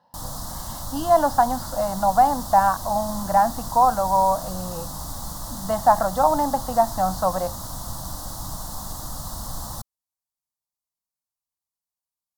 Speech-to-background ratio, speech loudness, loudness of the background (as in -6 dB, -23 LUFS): 12.0 dB, -21.0 LUFS, -33.0 LUFS